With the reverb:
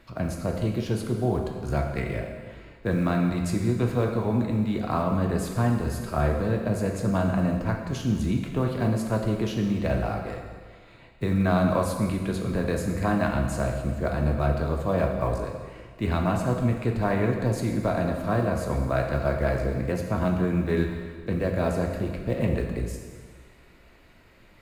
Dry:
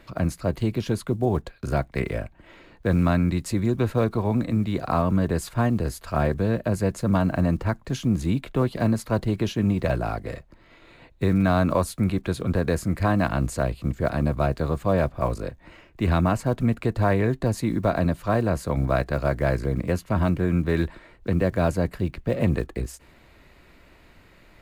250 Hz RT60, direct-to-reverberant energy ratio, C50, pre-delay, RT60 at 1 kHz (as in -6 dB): 1.5 s, 1.5 dB, 4.5 dB, 6 ms, 1.6 s